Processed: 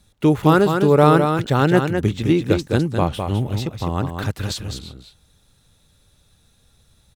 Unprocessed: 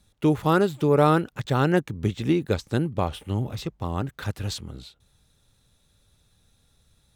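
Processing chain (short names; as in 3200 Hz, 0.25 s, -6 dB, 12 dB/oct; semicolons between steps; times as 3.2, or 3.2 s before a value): echo 0.207 s -6 dB; gain +5 dB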